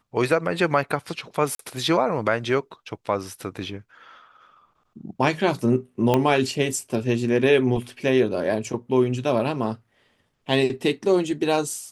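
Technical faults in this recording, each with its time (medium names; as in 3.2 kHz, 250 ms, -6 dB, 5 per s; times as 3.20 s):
1.55–1.59 s: dropout 43 ms
6.14 s: pop -7 dBFS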